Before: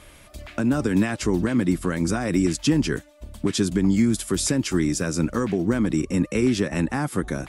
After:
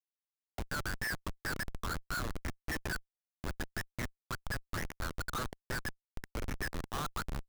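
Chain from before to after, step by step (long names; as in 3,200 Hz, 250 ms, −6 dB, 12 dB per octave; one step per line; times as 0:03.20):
dynamic equaliser 260 Hz, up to −4 dB, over −37 dBFS, Q 5.4
envelope filter 600–1,800 Hz, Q 9.9, up, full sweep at −17.5 dBFS
comparator with hysteresis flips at −42.5 dBFS
level +10 dB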